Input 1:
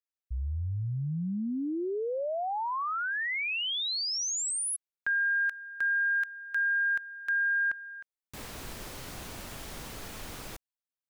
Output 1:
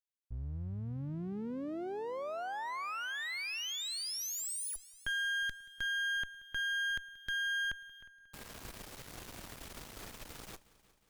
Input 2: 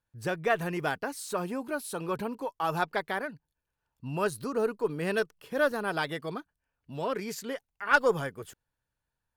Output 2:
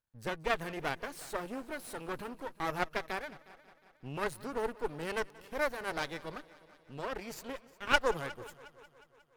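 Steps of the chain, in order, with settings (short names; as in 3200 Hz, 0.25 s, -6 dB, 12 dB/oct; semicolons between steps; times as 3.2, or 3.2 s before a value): half-wave rectifier; added harmonics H 2 -16 dB, 6 -29 dB, 8 -34 dB, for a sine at -11 dBFS; multi-head echo 0.18 s, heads first and second, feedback 52%, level -22.5 dB; gain -2.5 dB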